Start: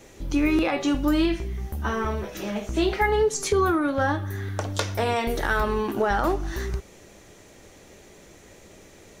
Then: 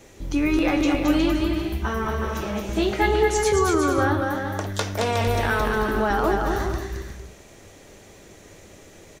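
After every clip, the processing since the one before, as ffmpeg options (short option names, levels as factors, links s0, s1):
-filter_complex "[0:a]equalizer=f=96:t=o:w=0.28:g=3.5,asplit=2[s0][s1];[s1]aecho=0:1:220|363|456|516.4|555.6:0.631|0.398|0.251|0.158|0.1[s2];[s0][s2]amix=inputs=2:normalize=0"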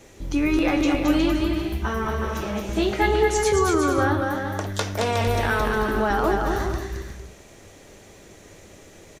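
-af "aresample=32000,aresample=44100"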